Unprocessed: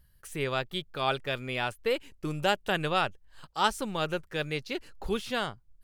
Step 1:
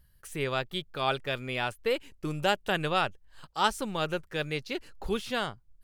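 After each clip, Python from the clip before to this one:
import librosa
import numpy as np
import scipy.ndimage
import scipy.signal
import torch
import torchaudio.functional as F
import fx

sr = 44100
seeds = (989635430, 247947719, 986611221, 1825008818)

y = x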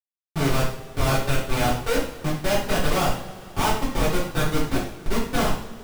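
y = fx.schmitt(x, sr, flips_db=-28.0)
y = fx.rev_double_slope(y, sr, seeds[0], early_s=0.52, late_s=3.9, knee_db=-22, drr_db=-10.0)
y = F.gain(torch.from_numpy(y), 2.0).numpy()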